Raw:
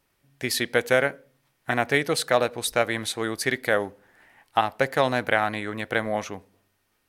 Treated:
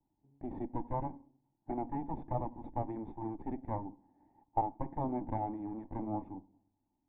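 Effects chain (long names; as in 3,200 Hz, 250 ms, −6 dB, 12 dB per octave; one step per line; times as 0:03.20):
lower of the sound and its delayed copy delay 1.1 ms
formant resonators in series u
level +7 dB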